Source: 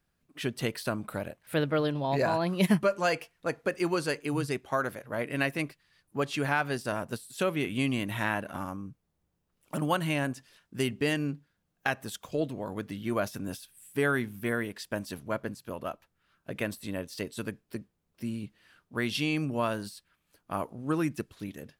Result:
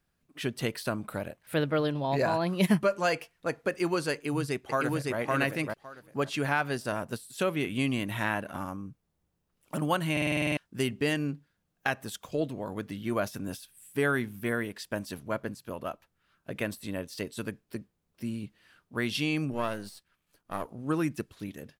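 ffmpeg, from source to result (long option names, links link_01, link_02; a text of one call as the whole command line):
ffmpeg -i in.wav -filter_complex "[0:a]asplit=2[link_01][link_02];[link_02]afade=type=in:start_time=4.13:duration=0.01,afade=type=out:start_time=5.17:duration=0.01,aecho=0:1:560|1120|1680:0.891251|0.133688|0.0200531[link_03];[link_01][link_03]amix=inputs=2:normalize=0,asettb=1/sr,asplit=3[link_04][link_05][link_06];[link_04]atrim=end=19.524[link_07];[link_05]atrim=start=19.52:end=20.66,asetpts=PTS-STARTPTS,afade=type=in:duration=0.004:curve=qsin,afade=type=out:start_time=1.136:duration=0.004:curve=qsin,aeval=exprs='if(lt(val(0),0),0.447*val(0),val(0))':channel_layout=same[link_08];[link_06]atrim=start=20.656[link_09];[link_07][link_08]acrossfade=duration=0.004:curve1=hsin:curve2=qsin[link_10];[link_10][link_09]acrossfade=duration=0.004:curve1=qsin:curve2=hsin,asplit=10[link_11][link_12][link_13][link_14][link_15][link_16][link_17][link_18][link_19][link_20];[link_11]atrim=end=10.172[link_21];[link_12]atrim=start=10.118:end=10.172[link_22];[link_13]atrim=start=10.118:end=10.172[link_23];[link_14]atrim=start=10.118:end=10.172[link_24];[link_15]atrim=start=10.118:end=10.172[link_25];[link_16]atrim=start=10.118:end=10.172[link_26];[link_17]atrim=start=10.118:end=10.172[link_27];[link_18]atrim=start=10.118:end=10.172[link_28];[link_19]atrim=start=10.118:end=10.172[link_29];[link_20]atrim=start=10.568[link_30];[link_21][link_22]acrossfade=duration=0.004:curve1=hsin:curve2=hsin[link_31];[link_31][link_23]acrossfade=duration=0.004:curve1=hsin:curve2=hsin[link_32];[link_32][link_24]acrossfade=duration=0.004:curve1=hsin:curve2=hsin[link_33];[link_33][link_25]acrossfade=duration=0.004:curve1=hsin:curve2=hsin[link_34];[link_34][link_26]acrossfade=duration=0.004:curve1=hsin:curve2=hsin[link_35];[link_35][link_27]acrossfade=duration=0.004:curve1=hsin:curve2=hsin[link_36];[link_36][link_28]acrossfade=duration=0.004:curve1=hsin:curve2=hsin[link_37];[link_37][link_29]acrossfade=duration=0.004:curve1=hsin:curve2=hsin[link_38];[link_38][link_30]acrossfade=duration=0.004:curve1=hsin:curve2=hsin" out.wav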